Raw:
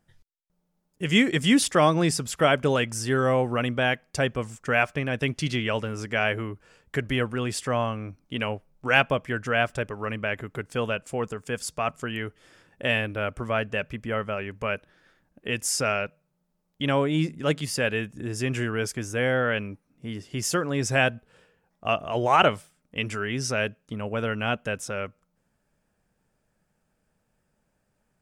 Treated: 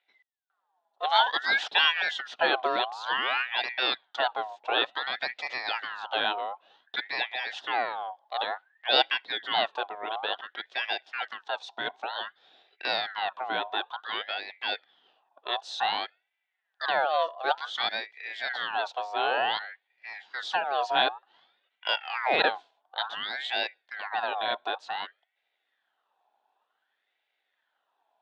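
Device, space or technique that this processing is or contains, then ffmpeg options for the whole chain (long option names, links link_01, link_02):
voice changer toy: -af "aeval=exprs='val(0)*sin(2*PI*1500*n/s+1500*0.45/0.55*sin(2*PI*0.55*n/s))':channel_layout=same,highpass=490,equalizer=frequency=760:width_type=q:width=4:gain=9,equalizer=frequency=1200:width_type=q:width=4:gain=-6,equalizer=frequency=2200:width_type=q:width=4:gain=-9,equalizer=frequency=3500:width_type=q:width=4:gain=7,lowpass=frequency=4000:width=0.5412,lowpass=frequency=4000:width=1.3066"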